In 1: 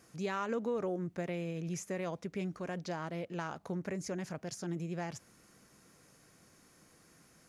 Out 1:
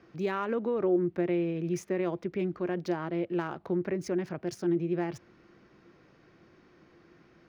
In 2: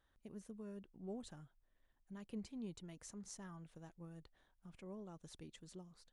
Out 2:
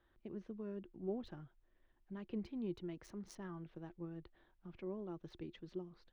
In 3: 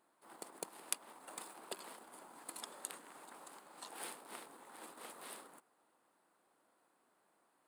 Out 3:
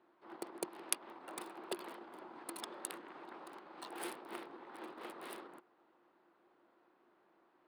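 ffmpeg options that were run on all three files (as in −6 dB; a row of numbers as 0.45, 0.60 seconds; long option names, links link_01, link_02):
-filter_complex "[0:a]equalizer=frequency=7400:width=6.6:gain=-9,acrossover=split=120|4100[link_01][link_02][link_03];[link_03]aeval=exprs='sgn(val(0))*max(abs(val(0))-0.00224,0)':channel_layout=same[link_04];[link_01][link_02][link_04]amix=inputs=3:normalize=0,equalizer=frequency=350:width=6:gain=12,volume=3.5dB"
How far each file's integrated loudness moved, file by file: +7.5, +5.0, +2.5 LU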